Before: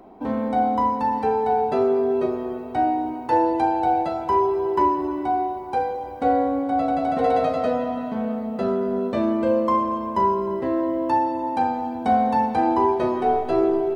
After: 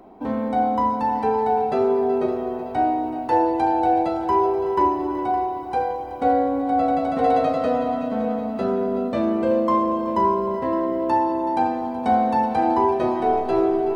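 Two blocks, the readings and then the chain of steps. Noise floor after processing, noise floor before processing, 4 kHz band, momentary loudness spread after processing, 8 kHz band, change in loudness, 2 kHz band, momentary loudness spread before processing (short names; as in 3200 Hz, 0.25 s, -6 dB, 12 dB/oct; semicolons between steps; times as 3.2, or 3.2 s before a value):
-30 dBFS, -32 dBFS, +0.5 dB, 5 LU, n/a, +0.5 dB, +0.5 dB, 6 LU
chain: multi-head echo 0.188 s, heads second and third, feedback 58%, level -14 dB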